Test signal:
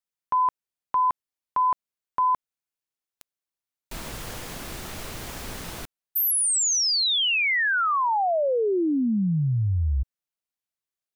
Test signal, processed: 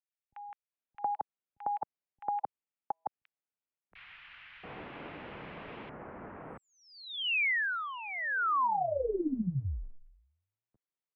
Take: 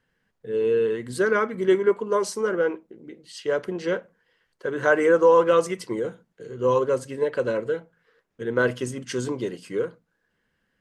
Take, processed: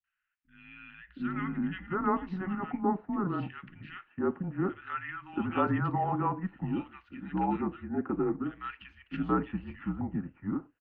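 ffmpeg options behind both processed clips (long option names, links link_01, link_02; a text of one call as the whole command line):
ffmpeg -i in.wav -filter_complex "[0:a]acrossover=split=170|1800[link_01][link_02][link_03];[link_03]adelay=40[link_04];[link_02]adelay=720[link_05];[link_01][link_05][link_04]amix=inputs=3:normalize=0,afftfilt=real='re*lt(hypot(re,im),0.891)':imag='im*lt(hypot(re,im),0.891)':win_size=1024:overlap=0.75,highpass=frequency=310:width_type=q:width=0.5412,highpass=frequency=310:width_type=q:width=1.307,lowpass=frequency=2900:width_type=q:width=0.5176,lowpass=frequency=2900:width_type=q:width=0.7071,lowpass=frequency=2900:width_type=q:width=1.932,afreqshift=-190,volume=-3dB" out.wav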